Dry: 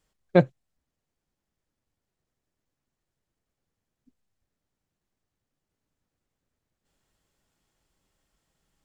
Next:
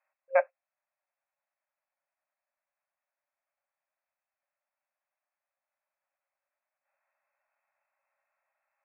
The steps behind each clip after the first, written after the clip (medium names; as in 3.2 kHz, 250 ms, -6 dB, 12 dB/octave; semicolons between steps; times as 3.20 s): FFT band-pass 530–2700 Hz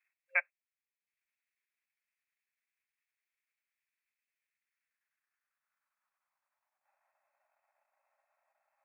high-pass sweep 2.2 kHz -> 680 Hz, 4.51–7.27 s; transient shaper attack +3 dB, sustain -8 dB; trim -1.5 dB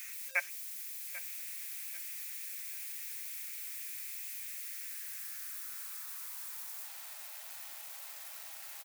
zero-crossing glitches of -33 dBFS; feedback delay 791 ms, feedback 35%, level -16 dB; trim -2 dB